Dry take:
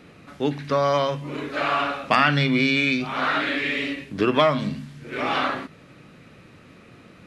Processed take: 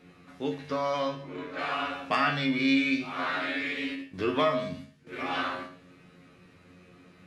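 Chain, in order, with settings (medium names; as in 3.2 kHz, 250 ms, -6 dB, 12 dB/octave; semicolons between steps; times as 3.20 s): 1.08–1.59 s: low-pass 3.1 kHz 6 dB/octave; 3.95–5.07 s: gate -34 dBFS, range -11 dB; feedback comb 90 Hz, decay 0.27 s, harmonics all, mix 90%; gated-style reverb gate 210 ms falling, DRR 8 dB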